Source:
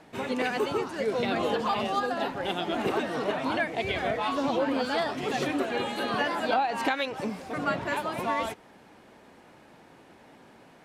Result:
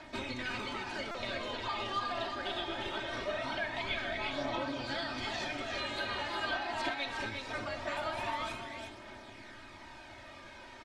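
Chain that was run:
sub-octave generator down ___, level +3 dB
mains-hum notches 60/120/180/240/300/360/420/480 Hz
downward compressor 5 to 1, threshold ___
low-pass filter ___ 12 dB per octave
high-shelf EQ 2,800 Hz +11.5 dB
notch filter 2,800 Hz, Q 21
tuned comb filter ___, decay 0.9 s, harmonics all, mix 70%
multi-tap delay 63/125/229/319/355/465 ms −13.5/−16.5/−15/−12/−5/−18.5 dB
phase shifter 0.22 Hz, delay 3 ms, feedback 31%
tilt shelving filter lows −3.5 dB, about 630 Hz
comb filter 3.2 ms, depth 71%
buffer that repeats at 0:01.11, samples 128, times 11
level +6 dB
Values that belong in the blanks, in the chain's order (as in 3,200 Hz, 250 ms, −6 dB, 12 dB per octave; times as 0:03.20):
1 octave, −37 dBFS, 4,200 Hz, 120 Hz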